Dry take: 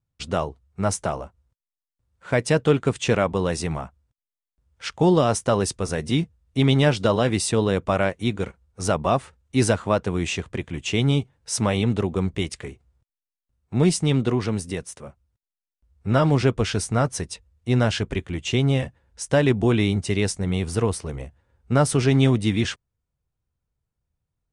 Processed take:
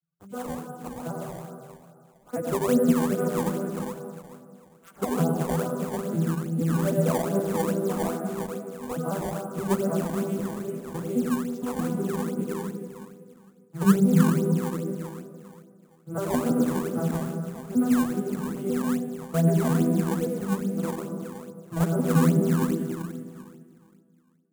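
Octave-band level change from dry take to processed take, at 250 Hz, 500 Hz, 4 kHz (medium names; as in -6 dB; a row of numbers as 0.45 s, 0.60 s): 0.0 dB, -5.0 dB, -15.0 dB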